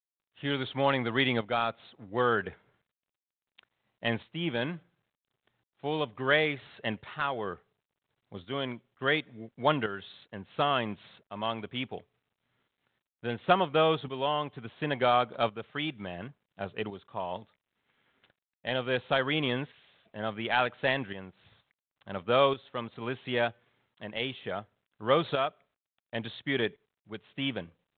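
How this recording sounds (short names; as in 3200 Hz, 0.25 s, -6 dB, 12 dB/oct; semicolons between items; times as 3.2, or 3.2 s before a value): tremolo saw up 0.71 Hz, depth 60%; G.726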